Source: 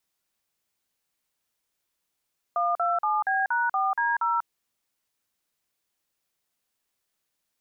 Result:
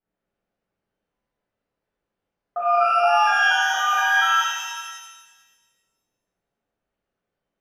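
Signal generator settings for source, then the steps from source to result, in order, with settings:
touch tones "127B#4D0", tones 192 ms, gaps 44 ms, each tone −24.5 dBFS
low-pass that shuts in the quiet parts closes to 1,000 Hz, open at −23 dBFS
parametric band 1,000 Hz −14 dB 0.29 octaves
reverb with rising layers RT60 1.4 s, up +12 semitones, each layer −8 dB, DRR −10 dB

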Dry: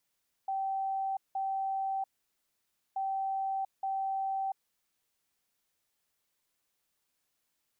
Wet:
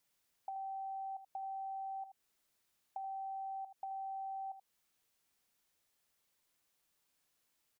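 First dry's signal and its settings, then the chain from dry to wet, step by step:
beeps in groups sine 775 Hz, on 0.69 s, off 0.18 s, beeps 2, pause 0.92 s, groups 2, −30 dBFS
downward compressor 6 to 1, threshold −43 dBFS
on a send: single-tap delay 79 ms −11 dB

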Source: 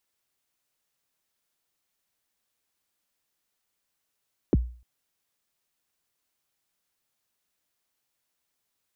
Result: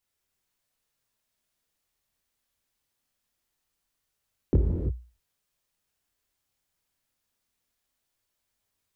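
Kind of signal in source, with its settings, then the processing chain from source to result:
synth kick length 0.30 s, from 460 Hz, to 60 Hz, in 29 ms, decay 0.42 s, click off, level −14 dB
low-shelf EQ 120 Hz +11.5 dB
multi-voice chorus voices 2, 0.23 Hz, delay 25 ms, depth 4.8 ms
reverb whose tail is shaped and stops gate 350 ms flat, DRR 1.5 dB

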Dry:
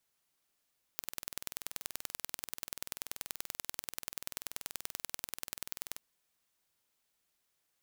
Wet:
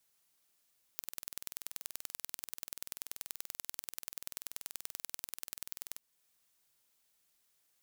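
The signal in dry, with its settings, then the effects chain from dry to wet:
impulse train 20.7 per second, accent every 2, −9 dBFS 4.99 s
high-shelf EQ 4,000 Hz +6 dB
downward compressor 1.5 to 1, threshold −47 dBFS

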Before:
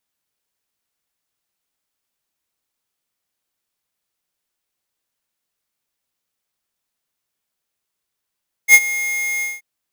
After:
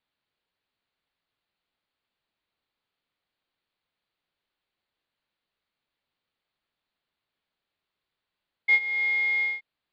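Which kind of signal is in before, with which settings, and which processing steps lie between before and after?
note with an ADSR envelope square 2,140 Hz, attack 62 ms, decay 50 ms, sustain −17 dB, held 0.74 s, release 190 ms −5 dBFS
Butterworth low-pass 4,500 Hz 72 dB per octave
downward compressor 2.5 to 1, threshold −24 dBFS

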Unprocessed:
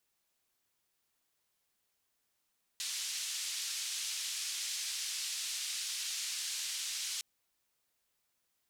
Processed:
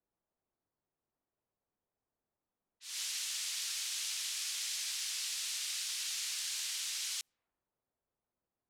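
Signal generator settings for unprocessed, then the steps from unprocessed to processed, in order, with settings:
band-limited noise 3,200–6,900 Hz, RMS −38.5 dBFS 4.41 s
low-pass that shuts in the quiet parts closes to 790 Hz, open at −37 dBFS
volume swells 204 ms

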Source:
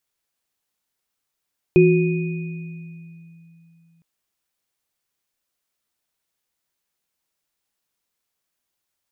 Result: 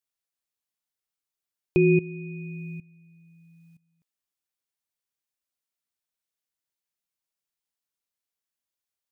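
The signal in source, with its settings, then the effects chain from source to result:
inharmonic partials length 2.26 s, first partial 166 Hz, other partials 364/2,480 Hz, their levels 5.5/−10.5 dB, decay 3.25 s, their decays 1.40/2.51 s, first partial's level −14 dB
high-shelf EQ 2,200 Hz +3.5 dB
output level in coarse steps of 18 dB

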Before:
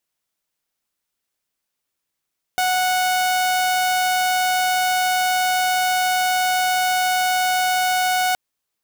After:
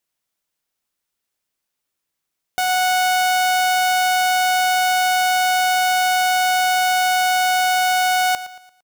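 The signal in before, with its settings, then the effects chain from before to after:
tone saw 737 Hz −14.5 dBFS 5.77 s
repeating echo 114 ms, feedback 40%, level −15 dB

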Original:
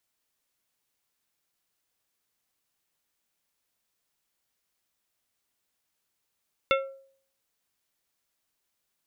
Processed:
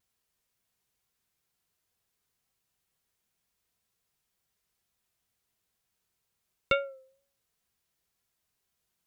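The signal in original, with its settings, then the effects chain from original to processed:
struck glass plate, lowest mode 541 Hz, decay 0.55 s, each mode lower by 1.5 dB, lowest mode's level −20 dB
low-shelf EQ 170 Hz +9 dB
notch comb filter 290 Hz
pitch vibrato 2.1 Hz 53 cents

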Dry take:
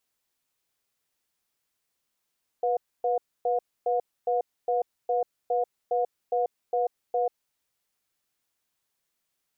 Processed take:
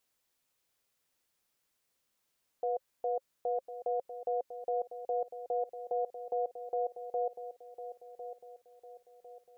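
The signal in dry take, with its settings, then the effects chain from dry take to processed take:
tone pair in a cadence 491 Hz, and 718 Hz, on 0.14 s, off 0.27 s, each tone −25 dBFS 4.88 s
parametric band 530 Hz +4 dB 0.23 octaves
brickwall limiter −26 dBFS
on a send: feedback echo with a low-pass in the loop 1,052 ms, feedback 47%, low-pass 900 Hz, level −9.5 dB

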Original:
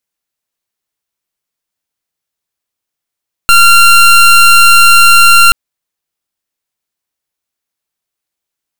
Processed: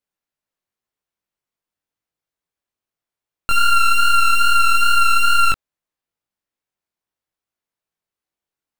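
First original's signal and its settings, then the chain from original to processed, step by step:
pulse wave 1,380 Hz, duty 23% −3.5 dBFS 2.03 s
brickwall limiter −8.5 dBFS
chorus effect 2.4 Hz, delay 18 ms, depth 4.1 ms
high-shelf EQ 2,700 Hz −9.5 dB

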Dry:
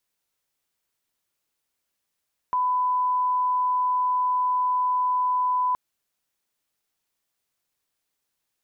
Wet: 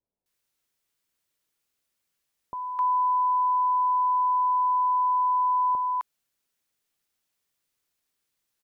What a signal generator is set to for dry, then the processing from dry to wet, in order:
line-up tone −20 dBFS 3.22 s
multiband delay without the direct sound lows, highs 260 ms, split 840 Hz

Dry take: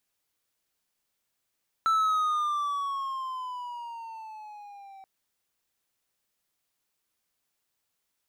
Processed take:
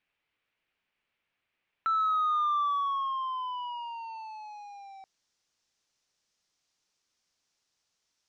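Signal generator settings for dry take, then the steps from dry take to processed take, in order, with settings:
pitch glide with a swell triangle, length 3.18 s, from 1,330 Hz, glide −9.5 semitones, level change −25 dB, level −18.5 dB
brickwall limiter −24.5 dBFS
low-pass filter sweep 2,500 Hz → 5,800 Hz, 0:03.40–0:04.66

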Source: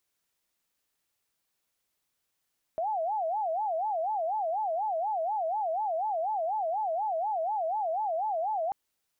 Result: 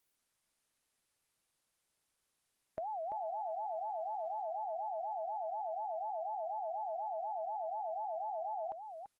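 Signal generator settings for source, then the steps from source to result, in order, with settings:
siren wail 637–874 Hz 4.1 per second sine −27 dBFS 5.94 s
downward compressor 3 to 1, threshold −42 dBFS
single-tap delay 339 ms −7.5 dB
Opus 24 kbit/s 48,000 Hz

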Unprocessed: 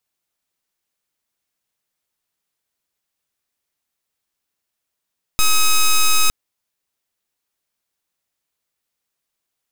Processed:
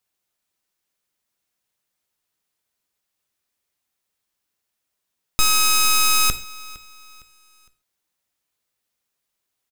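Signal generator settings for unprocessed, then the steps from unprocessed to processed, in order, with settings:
pulse wave 1,270 Hz, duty 7% −12.5 dBFS 0.91 s
repeating echo 459 ms, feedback 37%, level −21 dB
reverb whose tail is shaped and stops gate 160 ms falling, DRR 10 dB

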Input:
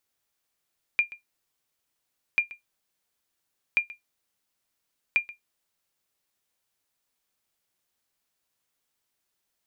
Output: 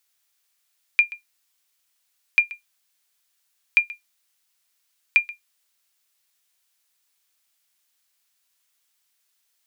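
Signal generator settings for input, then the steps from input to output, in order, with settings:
ping with an echo 2,400 Hz, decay 0.14 s, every 1.39 s, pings 4, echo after 0.13 s, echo −19.5 dB −13 dBFS
tilt shelving filter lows −9 dB, about 830 Hz

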